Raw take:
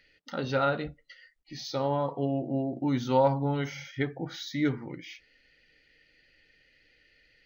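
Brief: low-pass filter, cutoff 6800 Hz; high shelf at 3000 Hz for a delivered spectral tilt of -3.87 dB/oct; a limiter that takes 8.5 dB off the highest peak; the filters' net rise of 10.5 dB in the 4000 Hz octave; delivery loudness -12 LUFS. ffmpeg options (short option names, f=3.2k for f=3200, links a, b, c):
-af "lowpass=6.8k,highshelf=f=3k:g=7,equalizer=f=4k:t=o:g=7.5,volume=19.5dB,alimiter=limit=-1dB:level=0:latency=1"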